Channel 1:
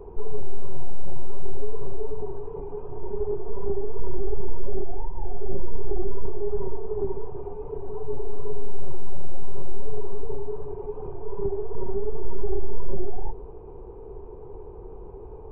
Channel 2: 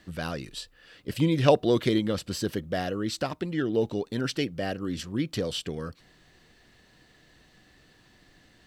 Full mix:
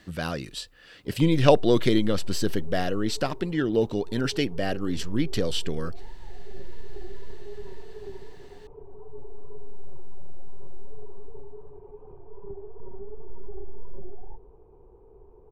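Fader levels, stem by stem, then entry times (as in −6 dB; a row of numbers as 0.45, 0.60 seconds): −12.0, +2.5 decibels; 1.05, 0.00 seconds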